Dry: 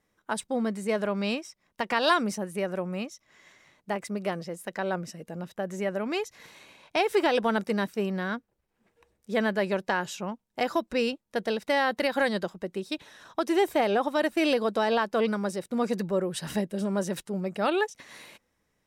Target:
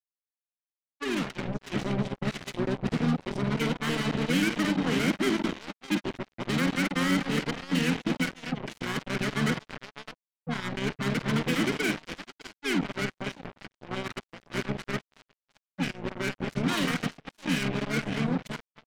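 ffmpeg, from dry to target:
-filter_complex "[0:a]areverse,adynamicequalizer=threshold=0.00708:dfrequency=940:dqfactor=2.5:tfrequency=940:tqfactor=2.5:attack=5:release=100:ratio=0.375:range=3:mode=boostabove:tftype=bell,asplit=3[s0][s1][s2];[s0]bandpass=f=270:t=q:w=8,volume=1[s3];[s1]bandpass=f=2290:t=q:w=8,volume=0.501[s4];[s2]bandpass=f=3010:t=q:w=8,volume=0.355[s5];[s3][s4][s5]amix=inputs=3:normalize=0,acrossover=split=140|370|1000|3200[s6][s7][s8][s9][s10];[s6]acompressor=threshold=0.00112:ratio=4[s11];[s7]acompressor=threshold=0.00447:ratio=4[s12];[s8]acompressor=threshold=0.00398:ratio=4[s13];[s9]acompressor=threshold=0.00398:ratio=4[s14];[s10]acompressor=threshold=0.00126:ratio=4[s15];[s11][s12][s13][s14][s15]amix=inputs=5:normalize=0,lowpass=10000,asplit=2[s16][s17];[s17]aecho=0:1:50|233|610:0.376|0.266|0.376[s18];[s16][s18]amix=inputs=2:normalize=0,acrusher=bits=6:mix=0:aa=0.5,dynaudnorm=f=120:g=17:m=4.47,asplit=2[s19][s20];[s20]asetrate=29433,aresample=44100,atempo=1.49831,volume=0.794[s21];[s19][s21]amix=inputs=2:normalize=0"

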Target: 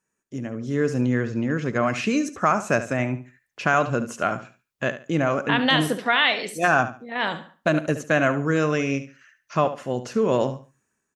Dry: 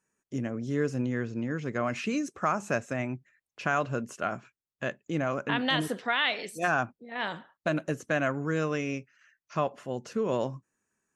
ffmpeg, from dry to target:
-af "dynaudnorm=f=490:g=3:m=2.37,aecho=1:1:72|144|216:0.237|0.0593|0.0148"

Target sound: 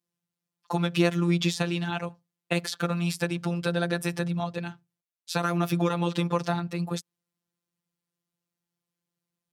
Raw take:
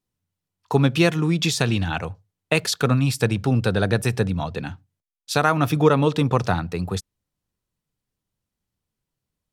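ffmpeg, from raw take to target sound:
-filter_complex "[0:a]acrossover=split=910|3000[s0][s1][s2];[s0]acompressor=threshold=0.126:ratio=4[s3];[s1]acompressor=threshold=0.0398:ratio=4[s4];[s2]acompressor=threshold=0.0282:ratio=4[s5];[s3][s4][s5]amix=inputs=3:normalize=0,afftfilt=real='hypot(re,im)*cos(PI*b)':imag='0':win_size=1024:overlap=0.75,highpass=110"

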